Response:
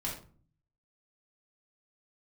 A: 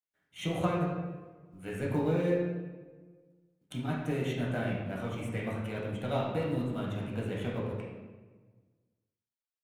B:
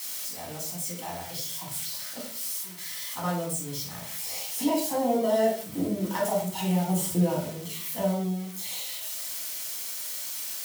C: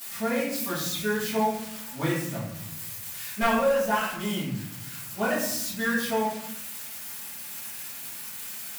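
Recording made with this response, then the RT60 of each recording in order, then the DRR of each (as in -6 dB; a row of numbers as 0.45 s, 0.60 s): B; 1.4 s, 0.45 s, 0.75 s; -4.5 dB, -4.0 dB, -11.5 dB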